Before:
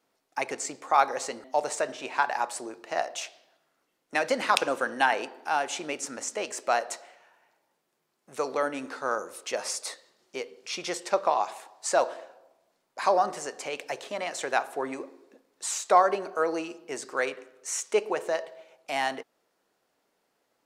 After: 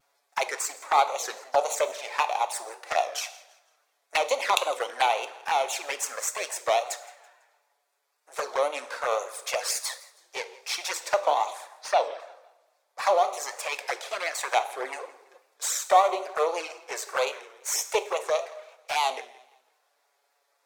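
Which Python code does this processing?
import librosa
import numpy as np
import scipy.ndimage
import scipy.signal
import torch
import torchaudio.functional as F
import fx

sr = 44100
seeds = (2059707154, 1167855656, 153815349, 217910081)

p1 = np.where(x < 0.0, 10.0 ** (-12.0 / 20.0) * x, x)
p2 = scipy.signal.sosfilt(scipy.signal.butter(4, 530.0, 'highpass', fs=sr, output='sos'), p1)
p3 = fx.notch(p2, sr, hz=2900.0, q=8.6)
p4 = fx.rider(p3, sr, range_db=3, speed_s=0.5)
p5 = p3 + F.gain(torch.from_numpy(p4), 2.5).numpy()
p6 = fx.vibrato(p5, sr, rate_hz=3.7, depth_cents=85.0)
p7 = fx.env_flanger(p6, sr, rest_ms=7.2, full_db=-22.5)
p8 = fx.savgol(p7, sr, points=15, at=(11.73, 12.2))
p9 = p8 + fx.echo_feedback(p8, sr, ms=166, feedback_pct=36, wet_db=-21.0, dry=0)
p10 = fx.rev_double_slope(p9, sr, seeds[0], early_s=0.63, late_s=2.2, knee_db=-26, drr_db=12.0)
p11 = fx.record_warp(p10, sr, rpm=33.33, depth_cents=100.0)
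y = F.gain(torch.from_numpy(p11), 2.0).numpy()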